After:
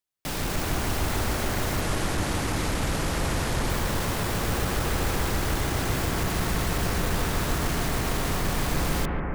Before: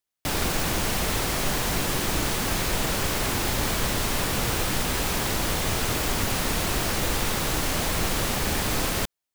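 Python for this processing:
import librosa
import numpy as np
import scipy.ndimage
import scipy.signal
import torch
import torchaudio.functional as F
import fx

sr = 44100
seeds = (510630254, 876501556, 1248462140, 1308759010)

y = fx.octave_divider(x, sr, octaves=1, level_db=0.0)
y = fx.steep_lowpass(y, sr, hz=12000.0, slope=36, at=(1.81, 3.7))
y = 10.0 ** (-18.5 / 20.0) * np.tanh(y / 10.0 ** (-18.5 / 20.0))
y = fx.echo_bbd(y, sr, ms=144, stages=2048, feedback_pct=84, wet_db=-3.0)
y = F.gain(torch.from_numpy(y), -3.5).numpy()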